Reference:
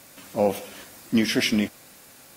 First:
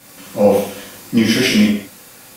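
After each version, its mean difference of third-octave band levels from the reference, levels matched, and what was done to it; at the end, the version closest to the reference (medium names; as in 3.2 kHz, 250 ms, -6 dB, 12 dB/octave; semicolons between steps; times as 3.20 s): 3.5 dB: gated-style reverb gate 240 ms falling, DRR -7.5 dB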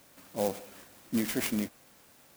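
2.5 dB: sampling jitter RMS 0.074 ms; trim -8.5 dB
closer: second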